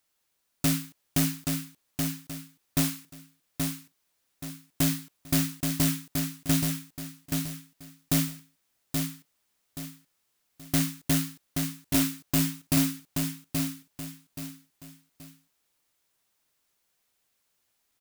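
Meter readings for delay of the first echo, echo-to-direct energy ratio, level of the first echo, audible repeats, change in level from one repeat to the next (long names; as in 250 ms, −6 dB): 827 ms, −4.0 dB, −4.5 dB, 3, −9.5 dB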